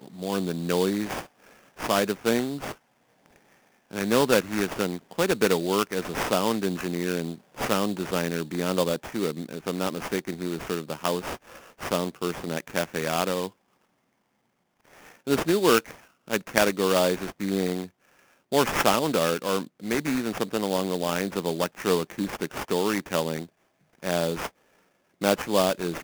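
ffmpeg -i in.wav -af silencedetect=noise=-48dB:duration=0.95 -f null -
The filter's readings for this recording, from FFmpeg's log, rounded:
silence_start: 13.50
silence_end: 14.85 | silence_duration: 1.35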